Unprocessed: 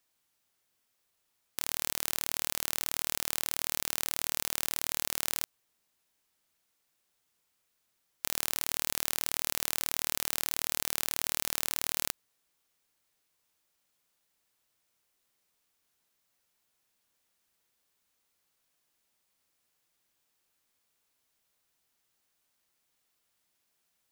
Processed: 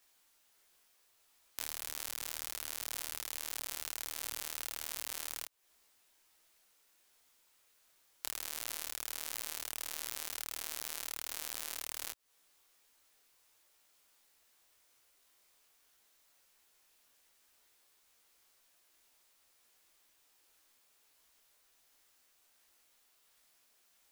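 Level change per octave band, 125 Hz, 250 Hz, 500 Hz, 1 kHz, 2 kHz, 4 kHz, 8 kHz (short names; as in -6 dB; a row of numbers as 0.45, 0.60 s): under -15 dB, -12.0 dB, -8.5 dB, -7.5 dB, -7.5 dB, -7.5 dB, -7.5 dB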